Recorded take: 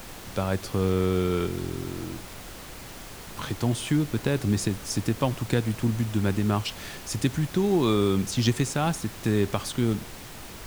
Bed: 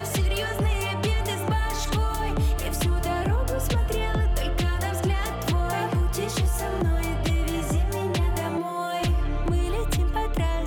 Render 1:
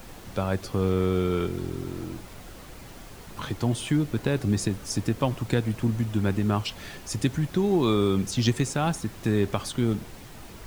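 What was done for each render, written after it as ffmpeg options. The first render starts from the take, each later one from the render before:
-af "afftdn=nr=6:nf=-42"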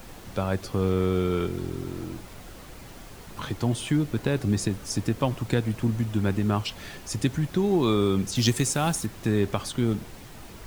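-filter_complex "[0:a]asettb=1/sr,asplit=3[a][b][c];[a]atrim=end=8.354[d];[b]atrim=start=8.35:end=9.06,asetpts=PTS-STARTPTS,afade=t=in:d=0.004:c=qsin,afade=t=out:st=0.706:d=0.004:c=qsin,equalizer=f=14k:t=o:w=1.9:g=10[e];[c]atrim=start=9.056[f];[d][e]acrossfade=d=0.004:c1=hsin:c2=qsin[g];[g][f]acrossfade=d=0.004:c1=qsin:c2=hsin"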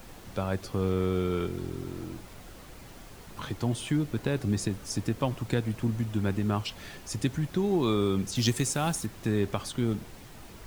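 -af "volume=-3.5dB"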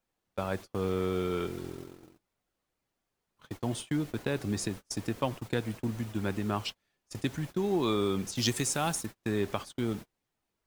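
-af "agate=range=-34dB:threshold=-34dB:ratio=16:detection=peak,lowshelf=f=200:g=-8.5"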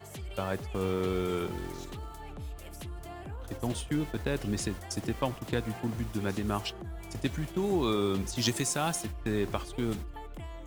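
-filter_complex "[1:a]volume=-17.5dB[a];[0:a][a]amix=inputs=2:normalize=0"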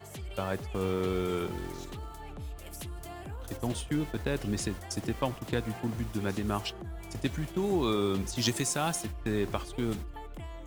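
-filter_complex "[0:a]asettb=1/sr,asplit=3[a][b][c];[a]atrim=end=2.664[d];[b]atrim=start=2.66:end=3.57,asetpts=PTS-STARTPTS,afade=t=in:d=0.004:c=qsin,afade=t=out:st=0.906:d=0.004:c=qsin,highshelf=f=4.4k:g=7[e];[c]atrim=start=3.566[f];[d][e]acrossfade=d=0.004:c1=hsin:c2=qsin[g];[g][f]acrossfade=d=0.004:c1=qsin:c2=hsin"

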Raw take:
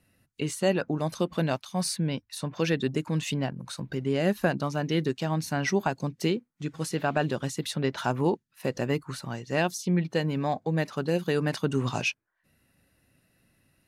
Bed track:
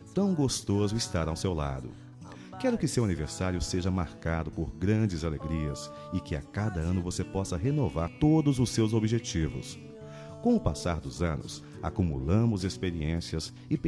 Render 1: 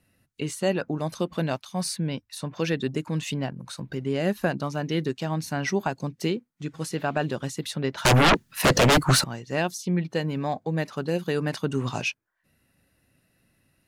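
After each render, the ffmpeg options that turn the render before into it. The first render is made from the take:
-filter_complex "[0:a]asettb=1/sr,asplit=3[a][b][c];[a]atrim=end=8.054[d];[b]atrim=start=8.05:end=9.24,asetpts=PTS-STARTPTS,afade=t=in:d=0.004:c=qsin,afade=t=out:st=1.186:d=0.004:c=qsin,aeval=exprs='0.211*sin(PI/2*7.08*val(0)/0.211)':c=same[e];[c]atrim=start=9.236[f];[d][e]acrossfade=d=0.004:c1=hsin:c2=qsin[g];[g][f]acrossfade=d=0.004:c1=qsin:c2=hsin"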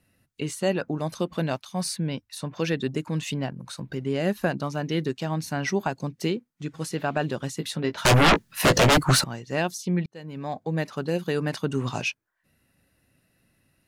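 -filter_complex "[0:a]asettb=1/sr,asplit=3[a][b][c];[a]atrim=end=7.584[d];[b]atrim=start=7.58:end=8.94,asetpts=PTS-STARTPTS,afade=t=in:d=0.004:c=qsin,afade=t=out:st=1.356:d=0.004:c=qsin,asplit=2[e][f];[f]adelay=18,volume=-8dB[g];[e][g]amix=inputs=2:normalize=0,atrim=end_sample=59976[h];[c]atrim=start=8.936[i];[d][h]acrossfade=d=0.004:c1=hsin:c2=qsin[j];[j][i]acrossfade=d=0.004:c1=qsin:c2=hsin,asplit=2[k][l];[k]atrim=end=10.06,asetpts=PTS-STARTPTS,afade=t=out:st=10.056:d=0.004:c=hsin[m];[l]atrim=start=10.06,asetpts=PTS-STARTPTS,afade=t=in:d=0.67[n];[m][n]concat=n=2:v=0:a=1"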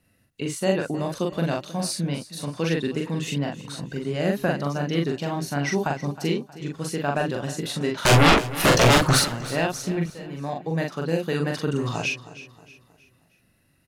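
-filter_complex "[0:a]asplit=2[a][b];[b]adelay=42,volume=-2.5dB[c];[a][c]amix=inputs=2:normalize=0,aecho=1:1:315|630|945|1260:0.158|0.065|0.0266|0.0109"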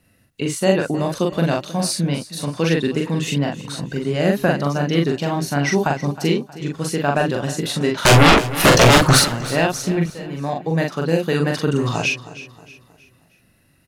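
-af "volume=6dB,alimiter=limit=-2dB:level=0:latency=1"

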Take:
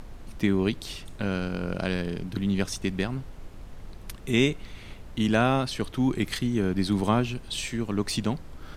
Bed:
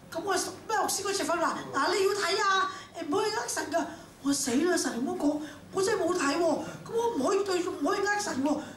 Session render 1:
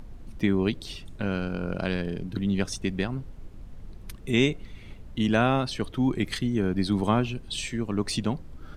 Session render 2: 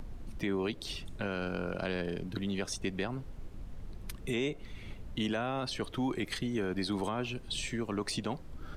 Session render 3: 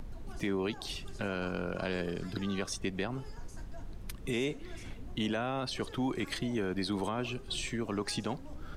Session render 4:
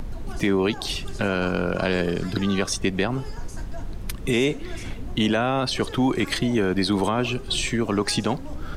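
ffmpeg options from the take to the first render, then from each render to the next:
-af "afftdn=nr=8:nf=-44"
-filter_complex "[0:a]acrossover=split=360|1000[a][b][c];[a]acompressor=threshold=-37dB:ratio=4[d];[b]acompressor=threshold=-30dB:ratio=4[e];[c]acompressor=threshold=-35dB:ratio=4[f];[d][e][f]amix=inputs=3:normalize=0,alimiter=limit=-23.5dB:level=0:latency=1:release=12"
-filter_complex "[1:a]volume=-24.5dB[a];[0:a][a]amix=inputs=2:normalize=0"
-af "volume=11.5dB"

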